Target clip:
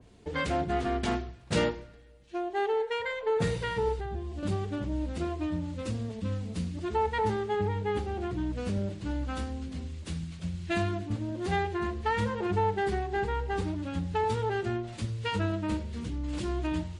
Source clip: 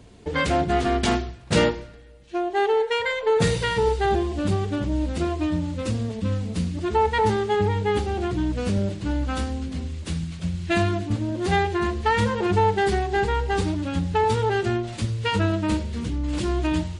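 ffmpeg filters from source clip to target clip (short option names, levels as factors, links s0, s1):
-filter_complex "[0:a]asettb=1/sr,asplit=3[s0][s1][s2];[s0]atrim=end=3.994[s3];[s1]atrim=start=3.99:end=4.43,asetpts=PTS-STARTPTS,afade=t=in:d=0.004:c=qsin,afade=t=out:st=0.436:d=0.004:c=qsin,acrossover=split=180[s4][s5];[s5]acompressor=threshold=0.02:ratio=3[s6];[s4][s6]amix=inputs=2:normalize=0[s7];[s2]atrim=start=4.426[s8];[s3][s7]acrossfade=d=0.004:c1=hsin:c2=qsin[s9];[s9][s8]acrossfade=d=0.004:c1=qsin:c2=hsin,adynamicequalizer=threshold=0.00891:dfrequency=2700:dqfactor=0.7:tfrequency=2700:tqfactor=0.7:attack=5:release=100:ratio=0.375:range=3:mode=cutabove:tftype=highshelf,volume=0.422"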